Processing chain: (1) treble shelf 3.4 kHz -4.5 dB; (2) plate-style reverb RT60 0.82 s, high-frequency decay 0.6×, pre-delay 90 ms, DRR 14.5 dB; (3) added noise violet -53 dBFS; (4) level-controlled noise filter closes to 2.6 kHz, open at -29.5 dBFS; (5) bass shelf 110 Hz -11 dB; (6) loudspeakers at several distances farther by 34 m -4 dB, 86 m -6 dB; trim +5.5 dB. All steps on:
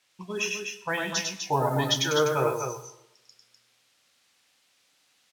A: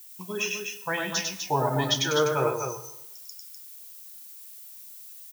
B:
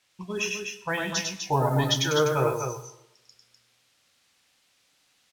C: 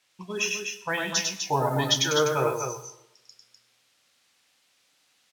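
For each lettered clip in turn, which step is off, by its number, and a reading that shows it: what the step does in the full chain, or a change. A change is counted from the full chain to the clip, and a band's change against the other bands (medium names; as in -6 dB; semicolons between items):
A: 4, momentary loudness spread change +9 LU; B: 5, 125 Hz band +4.5 dB; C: 1, 8 kHz band +3.5 dB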